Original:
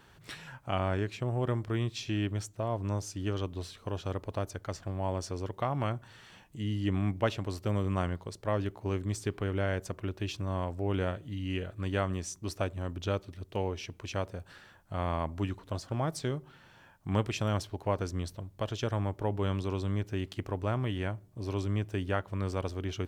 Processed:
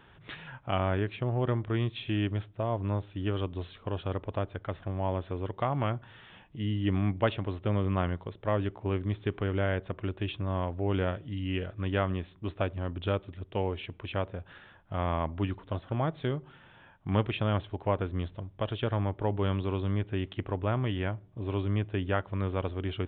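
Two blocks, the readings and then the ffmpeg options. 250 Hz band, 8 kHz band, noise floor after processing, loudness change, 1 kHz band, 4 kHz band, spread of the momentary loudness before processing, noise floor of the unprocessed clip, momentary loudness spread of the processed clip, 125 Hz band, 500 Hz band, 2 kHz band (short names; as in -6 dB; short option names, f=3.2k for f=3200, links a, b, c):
+2.0 dB, under -35 dB, -57 dBFS, +2.0 dB, +2.0 dB, +0.5 dB, 7 LU, -58 dBFS, 8 LU, +2.0 dB, +2.0 dB, +2.0 dB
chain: -af "aresample=8000,aresample=44100,volume=2dB"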